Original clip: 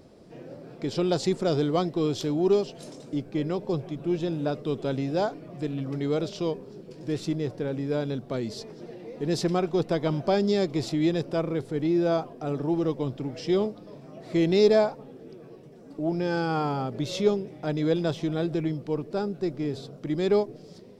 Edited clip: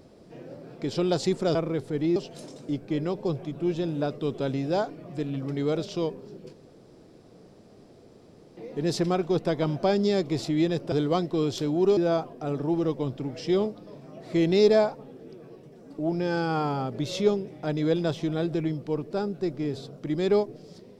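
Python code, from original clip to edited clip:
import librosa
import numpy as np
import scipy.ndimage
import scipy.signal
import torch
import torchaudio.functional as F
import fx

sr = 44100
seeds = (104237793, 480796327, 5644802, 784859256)

y = fx.edit(x, sr, fx.swap(start_s=1.55, length_s=1.05, other_s=11.36, other_length_s=0.61),
    fx.room_tone_fill(start_s=6.97, length_s=2.04), tone=tone)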